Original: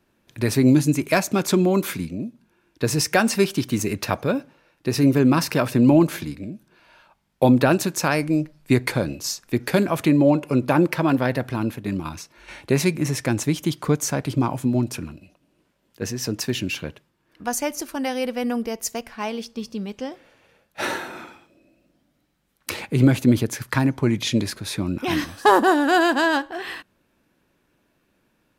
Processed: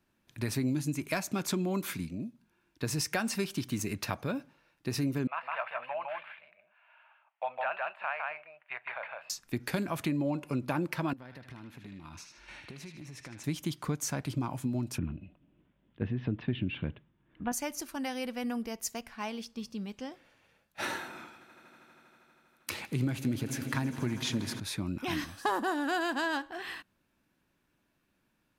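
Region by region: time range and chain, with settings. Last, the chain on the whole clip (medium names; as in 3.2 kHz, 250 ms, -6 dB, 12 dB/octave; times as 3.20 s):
5.27–9.30 s: de-esser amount 60% + elliptic band-pass 650–2800 Hz + delay 158 ms -3 dB
11.13–13.44 s: treble shelf 10 kHz -11.5 dB + compression, threshold -35 dBFS + band-passed feedback delay 77 ms, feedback 61%, band-pass 2.9 kHz, level -3.5 dB
14.98–17.52 s: Chebyshev low-pass 3.5 kHz, order 5 + bass shelf 460 Hz +10.5 dB
21.01–24.60 s: high-pass 59 Hz + echo with a slow build-up 80 ms, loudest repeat 5, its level -18 dB
whole clip: peaking EQ 470 Hz -5.5 dB 1 oct; compression 3:1, threshold -21 dBFS; trim -7.5 dB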